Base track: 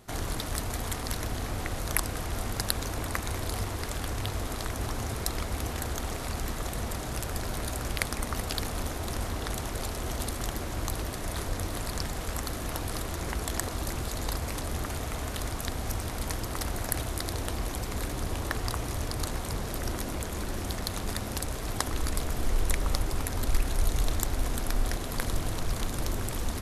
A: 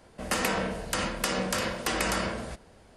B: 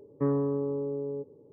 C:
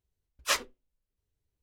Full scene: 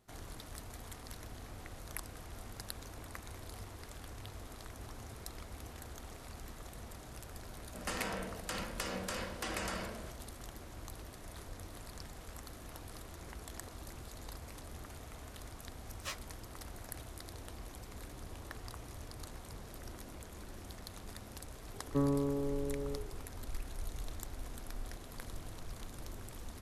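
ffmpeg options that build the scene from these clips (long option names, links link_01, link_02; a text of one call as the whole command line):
ffmpeg -i bed.wav -i cue0.wav -i cue1.wav -i cue2.wav -filter_complex "[0:a]volume=-15.5dB[link_01];[3:a]asplit=2[link_02][link_03];[link_03]adelay=13,volume=-4dB[link_04];[link_02][link_04]amix=inputs=2:normalize=0[link_05];[2:a]bandreject=frequency=60:width_type=h:width=6,bandreject=frequency=120:width_type=h:width=6,bandreject=frequency=180:width_type=h:width=6,bandreject=frequency=240:width_type=h:width=6,bandreject=frequency=300:width_type=h:width=6,bandreject=frequency=360:width_type=h:width=6,bandreject=frequency=420:width_type=h:width=6,bandreject=frequency=480:width_type=h:width=6,bandreject=frequency=540:width_type=h:width=6,bandreject=frequency=600:width_type=h:width=6[link_06];[1:a]atrim=end=2.96,asetpts=PTS-STARTPTS,volume=-11dB,afade=type=in:duration=0.004:curve=hsin,afade=type=out:start_time=2.956:duration=0.004:curve=hsin,adelay=7560[link_07];[link_05]atrim=end=1.62,asetpts=PTS-STARTPTS,volume=-16.5dB,afade=type=in:duration=0.004:curve=hsin,afade=type=out:start_time=1.616:duration=0.004:curve=hsin,adelay=15570[link_08];[link_06]atrim=end=1.52,asetpts=PTS-STARTPTS,volume=-3dB,afade=type=in:duration=0.004:curve=hsin,afade=type=out:start_time=1.516:duration=0.004:curve=hsin,adelay=21740[link_09];[link_01][link_07][link_08][link_09]amix=inputs=4:normalize=0" out.wav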